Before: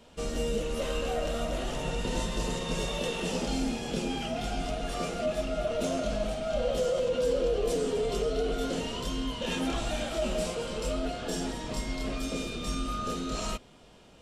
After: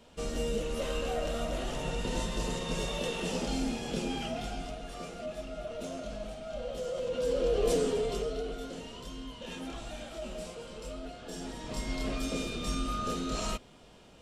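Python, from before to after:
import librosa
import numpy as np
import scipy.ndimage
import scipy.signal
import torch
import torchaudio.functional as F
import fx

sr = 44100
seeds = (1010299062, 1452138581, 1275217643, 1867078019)

y = fx.gain(x, sr, db=fx.line((4.27, -2.0), (4.86, -9.0), (6.77, -9.0), (7.72, 2.0), (8.71, -10.0), (11.24, -10.0), (11.94, -0.5)))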